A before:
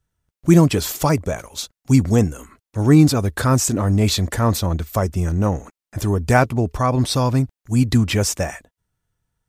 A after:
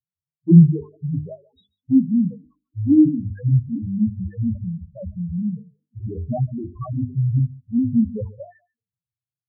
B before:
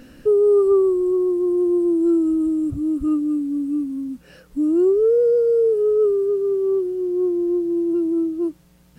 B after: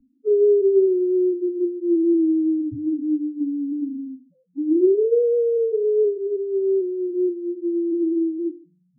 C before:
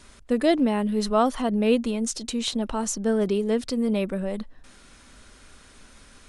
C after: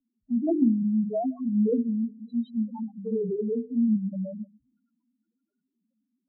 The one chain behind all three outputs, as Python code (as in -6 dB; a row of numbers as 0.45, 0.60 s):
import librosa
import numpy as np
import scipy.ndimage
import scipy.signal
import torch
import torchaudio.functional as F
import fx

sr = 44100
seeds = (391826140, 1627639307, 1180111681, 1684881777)

p1 = fx.peak_eq(x, sr, hz=4800.0, db=-12.5, octaves=0.58)
p2 = fx.sample_hold(p1, sr, seeds[0], rate_hz=4000.0, jitter_pct=0)
p3 = p1 + F.gain(torch.from_numpy(p2), -6.0).numpy()
p4 = fx.bandpass_edges(p3, sr, low_hz=140.0, high_hz=6500.0)
p5 = fx.env_lowpass_down(p4, sr, base_hz=760.0, full_db=-10.5)
p6 = p5 + fx.echo_single(p5, sr, ms=142, db=-20.5, dry=0)
p7 = fx.spec_topn(p6, sr, count=1)
p8 = fx.tilt_eq(p7, sr, slope=-3.5)
p9 = fx.hum_notches(p8, sr, base_hz=50, count=9)
p10 = fx.band_widen(p9, sr, depth_pct=40)
y = F.gain(torch.from_numpy(p10), -4.5).numpy()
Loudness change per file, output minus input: -2.0, -2.0, -2.5 LU